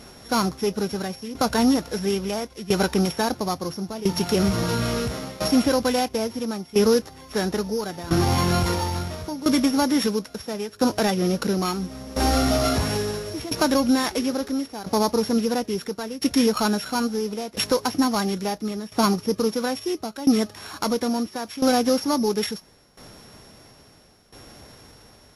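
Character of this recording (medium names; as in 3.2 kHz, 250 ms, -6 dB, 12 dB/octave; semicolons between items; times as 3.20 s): a buzz of ramps at a fixed pitch in blocks of 8 samples; tremolo saw down 0.74 Hz, depth 85%; Vorbis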